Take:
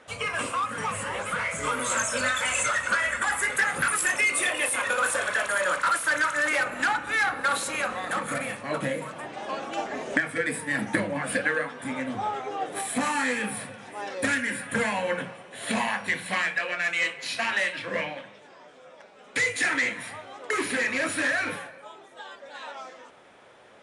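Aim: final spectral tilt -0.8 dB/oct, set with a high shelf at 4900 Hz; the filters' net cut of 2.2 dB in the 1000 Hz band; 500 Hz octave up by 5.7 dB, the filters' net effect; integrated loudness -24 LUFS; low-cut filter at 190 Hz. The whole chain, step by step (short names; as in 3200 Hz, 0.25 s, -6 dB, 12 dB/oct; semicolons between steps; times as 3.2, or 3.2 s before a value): HPF 190 Hz; bell 500 Hz +8 dB; bell 1000 Hz -6 dB; high shelf 4900 Hz +9 dB; gain +0.5 dB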